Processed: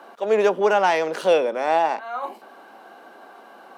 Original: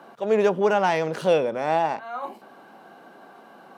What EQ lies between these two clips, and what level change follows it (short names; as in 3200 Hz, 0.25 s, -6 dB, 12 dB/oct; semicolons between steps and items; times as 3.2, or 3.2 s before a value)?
Bessel high-pass 340 Hz, order 8; +3.5 dB